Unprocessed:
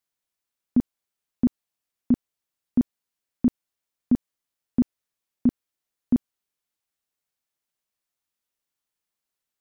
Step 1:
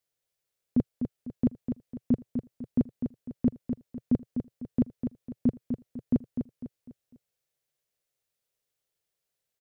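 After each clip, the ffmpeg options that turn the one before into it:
ffmpeg -i in.wav -filter_complex "[0:a]equalizer=frequency=125:width_type=o:width=1:gain=7,equalizer=frequency=250:width_type=o:width=1:gain=-7,equalizer=frequency=500:width_type=o:width=1:gain=9,equalizer=frequency=1000:width_type=o:width=1:gain=-6,alimiter=limit=-15.5dB:level=0:latency=1:release=11,asplit=2[link_01][link_02];[link_02]aecho=0:1:250|500|750|1000:0.447|0.17|0.0645|0.0245[link_03];[link_01][link_03]amix=inputs=2:normalize=0" out.wav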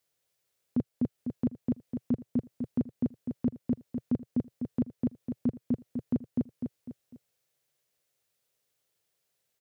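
ffmpeg -i in.wav -filter_complex "[0:a]highpass=67,asplit=2[link_01][link_02];[link_02]acompressor=threshold=-35dB:ratio=6,volume=-1dB[link_03];[link_01][link_03]amix=inputs=2:normalize=0,alimiter=limit=-20.5dB:level=0:latency=1:release=65" out.wav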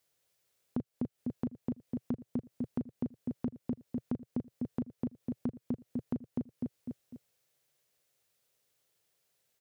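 ffmpeg -i in.wav -af "acompressor=threshold=-34dB:ratio=6,volume=2dB" out.wav

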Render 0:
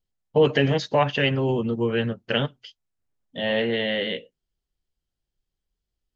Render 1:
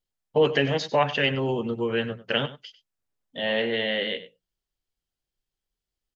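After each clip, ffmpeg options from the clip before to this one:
ffmpeg -i in.wav -af "lowshelf=frequency=320:gain=-6.5,bandreject=frequency=60:width_type=h:width=6,bandreject=frequency=120:width_type=h:width=6,bandreject=frequency=180:width_type=h:width=6,aecho=1:1:97:0.168" out.wav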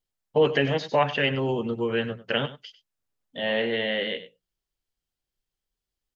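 ffmpeg -i in.wav -filter_complex "[0:a]acrossover=split=3600[link_01][link_02];[link_02]acompressor=threshold=-42dB:ratio=4:attack=1:release=60[link_03];[link_01][link_03]amix=inputs=2:normalize=0" out.wav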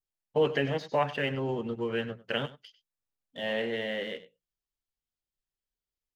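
ffmpeg -i in.wav -filter_complex "[0:a]adynamicequalizer=threshold=0.00708:dfrequency=3100:dqfactor=1.4:tfrequency=3100:tqfactor=1.4:attack=5:release=100:ratio=0.375:range=3:mode=cutabove:tftype=bell,asplit=2[link_01][link_02];[link_02]aeval=exprs='sgn(val(0))*max(abs(val(0))-0.01,0)':channel_layout=same,volume=-5.5dB[link_03];[link_01][link_03]amix=inputs=2:normalize=0,volume=-8.5dB" out.wav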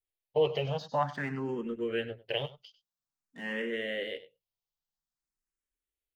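ffmpeg -i in.wav -filter_complex "[0:a]asplit=2[link_01][link_02];[link_02]afreqshift=0.5[link_03];[link_01][link_03]amix=inputs=2:normalize=1" out.wav

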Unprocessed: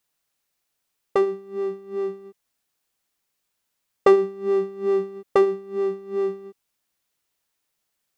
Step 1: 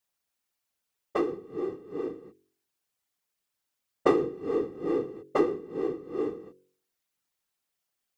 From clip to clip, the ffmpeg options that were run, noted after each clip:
ffmpeg -i in.wav -af "afftfilt=real='hypot(re,im)*cos(2*PI*random(0))':imag='hypot(re,im)*sin(2*PI*random(1))':win_size=512:overlap=0.75,bandreject=frequency=46.23:width_type=h:width=4,bandreject=frequency=92.46:width_type=h:width=4,bandreject=frequency=138.69:width_type=h:width=4,bandreject=frequency=184.92:width_type=h:width=4,bandreject=frequency=231.15:width_type=h:width=4,bandreject=frequency=277.38:width_type=h:width=4,bandreject=frequency=323.61:width_type=h:width=4,bandreject=frequency=369.84:width_type=h:width=4,bandreject=frequency=416.07:width_type=h:width=4,bandreject=frequency=462.3:width_type=h:width=4,bandreject=frequency=508.53:width_type=h:width=4" out.wav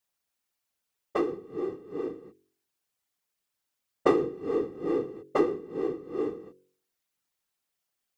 ffmpeg -i in.wav -af anull out.wav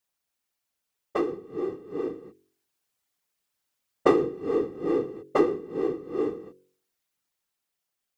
ffmpeg -i in.wav -af "dynaudnorm=framelen=360:gausssize=9:maxgain=3.5dB" out.wav

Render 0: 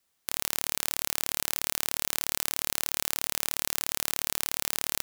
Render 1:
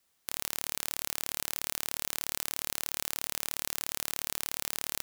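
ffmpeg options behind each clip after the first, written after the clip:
ffmpeg -i in.wav -af "asoftclip=type=tanh:threshold=-6.5dB,volume=1.5dB" out.wav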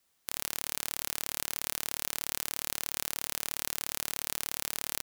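ffmpeg -i in.wav -filter_complex "[0:a]asplit=2[link_01][link_02];[link_02]adelay=87.46,volume=-27dB,highshelf=frequency=4000:gain=-1.97[link_03];[link_01][link_03]amix=inputs=2:normalize=0" out.wav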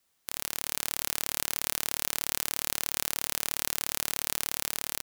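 ffmpeg -i in.wav -af "dynaudnorm=framelen=260:gausssize=5:maxgain=7dB" out.wav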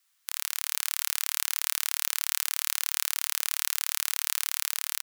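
ffmpeg -i in.wav -af "highpass=frequency=1100:width=0.5412,highpass=frequency=1100:width=1.3066,volume=2.5dB" out.wav

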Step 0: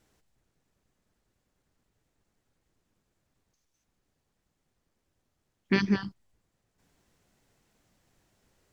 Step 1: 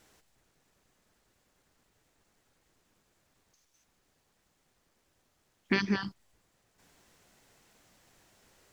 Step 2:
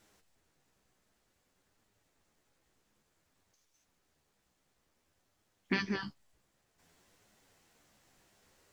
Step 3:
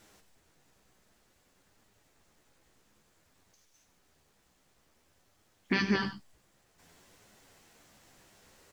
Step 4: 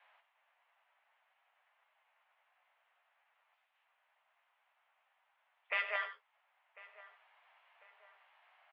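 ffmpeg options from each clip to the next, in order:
ffmpeg -i in.wav -af "lowshelf=frequency=340:gain=-8.5,acompressor=threshold=-36dB:ratio=2.5,volume=8.5dB" out.wav
ffmpeg -i in.wav -af "flanger=delay=9.1:depth=7:regen=42:speed=0.55:shape=triangular" out.wav
ffmpeg -i in.wav -af "alimiter=limit=-23dB:level=0:latency=1:release=78,aecho=1:1:96:0.266,volume=7dB" out.wav
ffmpeg -i in.wav -filter_complex "[0:a]highpass=frequency=480:width_type=q:width=0.5412,highpass=frequency=480:width_type=q:width=1.307,lowpass=frequency=2800:width_type=q:width=0.5176,lowpass=frequency=2800:width_type=q:width=0.7071,lowpass=frequency=2800:width_type=q:width=1.932,afreqshift=220,asplit=2[link_01][link_02];[link_02]adelay=1048,lowpass=frequency=1800:poles=1,volume=-18dB,asplit=2[link_03][link_04];[link_04]adelay=1048,lowpass=frequency=1800:poles=1,volume=0.5,asplit=2[link_05][link_06];[link_06]adelay=1048,lowpass=frequency=1800:poles=1,volume=0.5,asplit=2[link_07][link_08];[link_08]adelay=1048,lowpass=frequency=1800:poles=1,volume=0.5[link_09];[link_01][link_03][link_05][link_07][link_09]amix=inputs=5:normalize=0,volume=-2.5dB" out.wav

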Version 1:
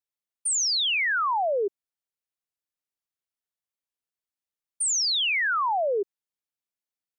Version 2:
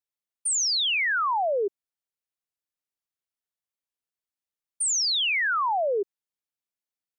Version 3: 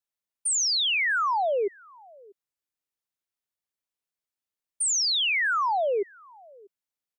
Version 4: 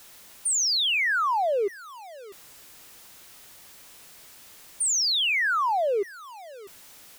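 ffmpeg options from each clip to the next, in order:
ffmpeg -i in.wav -af anull out.wav
ffmpeg -i in.wav -filter_complex "[0:a]asplit=2[link_01][link_02];[link_02]adelay=641.4,volume=-25dB,highshelf=frequency=4000:gain=-14.4[link_03];[link_01][link_03]amix=inputs=2:normalize=0" out.wav
ffmpeg -i in.wav -af "aeval=exprs='val(0)+0.5*0.00891*sgn(val(0))':channel_layout=same" out.wav

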